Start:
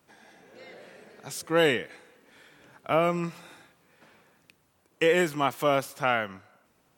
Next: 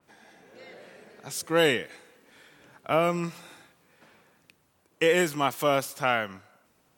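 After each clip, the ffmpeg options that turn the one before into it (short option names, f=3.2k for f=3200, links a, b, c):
-af "adynamicequalizer=threshold=0.00708:dfrequency=3400:dqfactor=0.7:tfrequency=3400:tqfactor=0.7:attack=5:release=100:ratio=0.375:range=2.5:mode=boostabove:tftype=highshelf"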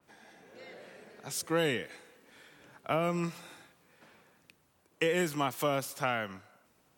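-filter_complex "[0:a]acrossover=split=250[a][b];[b]acompressor=threshold=-25dB:ratio=6[c];[a][c]amix=inputs=2:normalize=0,volume=-2dB"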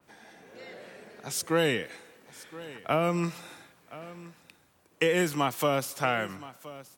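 -af "aecho=1:1:1021:0.133,volume=4dB"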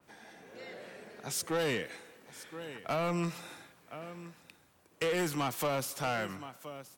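-af "asoftclip=type=tanh:threshold=-26dB,volume=-1dB"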